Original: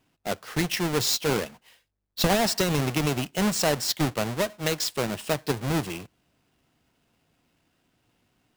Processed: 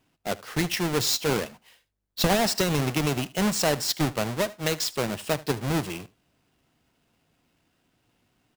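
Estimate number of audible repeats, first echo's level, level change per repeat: 1, -20.5 dB, no regular repeats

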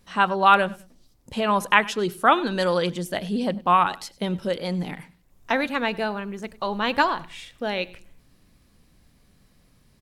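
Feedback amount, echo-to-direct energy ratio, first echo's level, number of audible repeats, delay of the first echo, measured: 25%, -21.0 dB, -21.5 dB, 2, 99 ms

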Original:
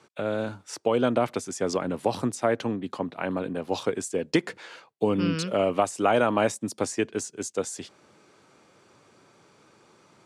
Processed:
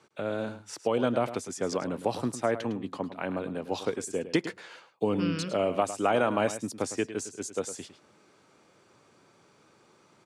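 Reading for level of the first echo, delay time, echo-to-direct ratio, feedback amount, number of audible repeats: -12.5 dB, 106 ms, -12.5 dB, no regular repeats, 1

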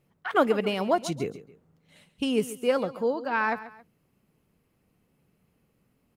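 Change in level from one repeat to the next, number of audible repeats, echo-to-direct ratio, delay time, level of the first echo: -9.0 dB, 2, -15.0 dB, 137 ms, -15.5 dB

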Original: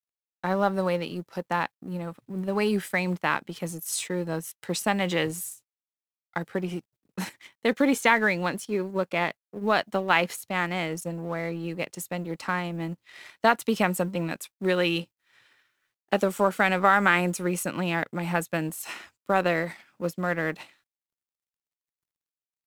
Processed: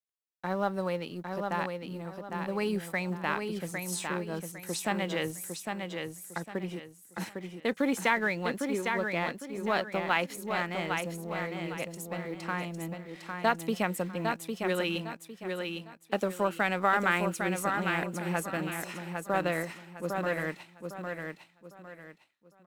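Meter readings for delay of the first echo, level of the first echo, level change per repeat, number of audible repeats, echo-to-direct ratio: 805 ms, -5.0 dB, -10.0 dB, 3, -4.5 dB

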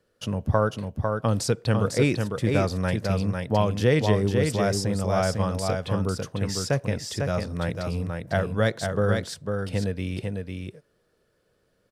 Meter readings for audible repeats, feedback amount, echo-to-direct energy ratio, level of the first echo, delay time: 1, no regular repeats, -4.5 dB, -4.5 dB, 500 ms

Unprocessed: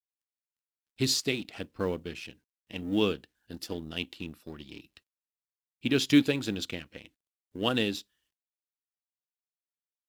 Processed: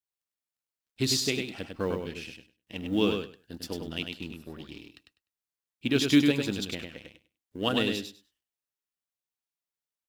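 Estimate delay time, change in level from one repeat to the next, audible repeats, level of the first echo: 100 ms, -15.5 dB, 2, -5.0 dB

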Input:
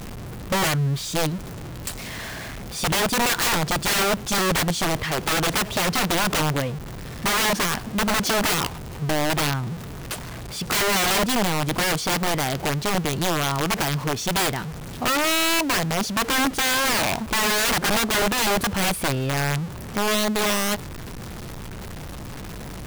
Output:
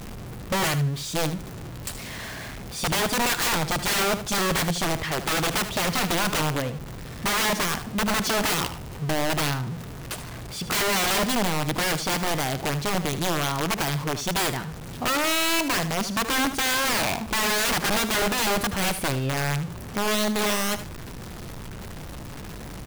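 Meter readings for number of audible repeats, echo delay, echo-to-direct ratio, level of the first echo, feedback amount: 2, 76 ms, -12.0 dB, -12.0 dB, 18%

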